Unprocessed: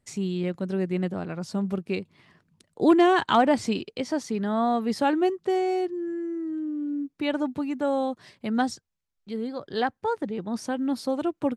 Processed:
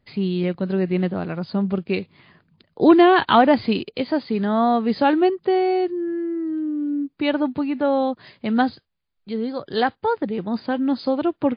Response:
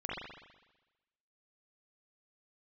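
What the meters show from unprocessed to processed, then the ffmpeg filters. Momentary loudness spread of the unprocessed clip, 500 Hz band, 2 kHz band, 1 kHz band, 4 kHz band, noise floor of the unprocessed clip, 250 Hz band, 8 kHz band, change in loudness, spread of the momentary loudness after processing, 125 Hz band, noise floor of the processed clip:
11 LU, +5.5 dB, +5.5 dB, +5.5 dB, +5.5 dB, −79 dBFS, +5.5 dB, below −30 dB, +5.5 dB, 11 LU, +5.5 dB, −70 dBFS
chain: -af "volume=6dB" -ar 11025 -c:a libmp3lame -b:a 32k

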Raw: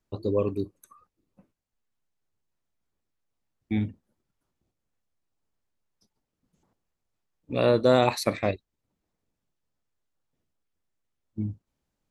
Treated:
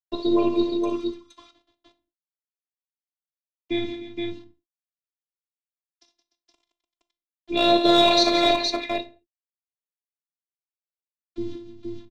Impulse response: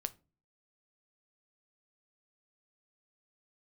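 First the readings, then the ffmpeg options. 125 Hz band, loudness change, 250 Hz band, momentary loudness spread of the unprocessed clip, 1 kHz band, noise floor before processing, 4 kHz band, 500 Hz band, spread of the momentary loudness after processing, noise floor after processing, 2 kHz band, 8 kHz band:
−9.5 dB, +4.5 dB, +7.5 dB, 15 LU, +7.5 dB, −83 dBFS, +16.0 dB, +2.5 dB, 19 LU, below −85 dBFS, +6.5 dB, +5.0 dB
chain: -filter_complex "[0:a]asplit=2[link_01][link_02];[link_02]acompressor=threshold=-31dB:ratio=6,volume=0.5dB[link_03];[link_01][link_03]amix=inputs=2:normalize=0,acrusher=bits=8:mix=0:aa=0.000001,highpass=140,equalizer=frequency=340:width_type=q:width=4:gain=-8,equalizer=frequency=630:width_type=q:width=4:gain=-4,equalizer=frequency=1500:width_type=q:width=4:gain=-7,equalizer=frequency=3700:width_type=q:width=4:gain=10,lowpass=frequency=5500:width=0.5412,lowpass=frequency=5500:width=1.3066,acrossover=split=690|2900[link_04][link_05][link_06];[link_05]asoftclip=type=hard:threshold=-27dB[link_07];[link_04][link_07][link_06]amix=inputs=3:normalize=0,aecho=1:1:40|61|74|170|297|469:0.237|0.335|0.15|0.282|0.168|0.631[link_08];[1:a]atrim=start_sample=2205,afade=type=out:start_time=0.2:duration=0.01,atrim=end_sample=9261,asetrate=29988,aresample=44100[link_09];[link_08][link_09]afir=irnorm=-1:irlink=0,afftfilt=real='hypot(re,im)*cos(PI*b)':imag='0':win_size=512:overlap=0.75,volume=7.5dB"

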